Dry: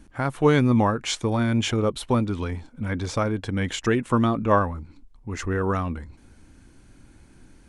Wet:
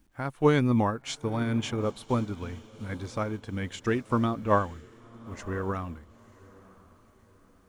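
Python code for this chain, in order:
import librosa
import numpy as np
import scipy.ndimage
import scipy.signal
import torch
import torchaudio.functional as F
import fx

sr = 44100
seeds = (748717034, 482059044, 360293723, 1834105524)

y = fx.quant_dither(x, sr, seeds[0], bits=10, dither='none')
y = fx.echo_diffused(y, sr, ms=971, feedback_pct=44, wet_db=-15.0)
y = fx.upward_expand(y, sr, threshold_db=-38.0, expansion=1.5)
y = y * 10.0 ** (-2.5 / 20.0)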